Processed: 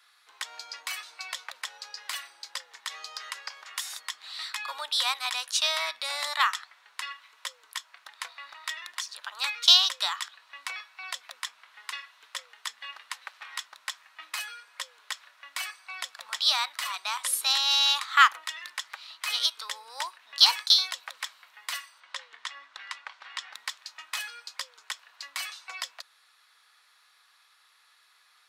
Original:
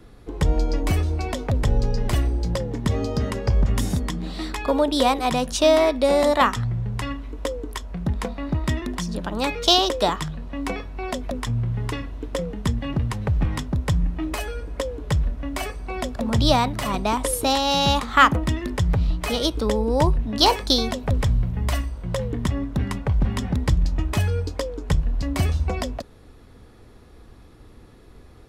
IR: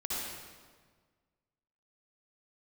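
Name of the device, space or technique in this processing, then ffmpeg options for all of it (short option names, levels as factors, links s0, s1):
headphones lying on a table: -filter_complex "[0:a]highpass=f=1200:w=0.5412,highpass=f=1200:w=1.3066,equalizer=f=4100:t=o:w=0.5:g=4.5,asettb=1/sr,asplit=3[s0][s1][s2];[s0]atrim=end=22.004[s3];[s1]atrim=start=22:end=23.53,asetpts=PTS-STARTPTS,afade=t=in:d=0.004:c=qsin,afade=t=out:st=1.526:d=0.004:c=qsin,lowpass=6100[s4];[s2]atrim=start=23.526[s5];[s3][s4]acrossfade=d=0.004:c1=hsin:c2=qsin[s6];[s6][s5]acrossfade=d=0.004:c1=qsin:c2=hsin,volume=0.841"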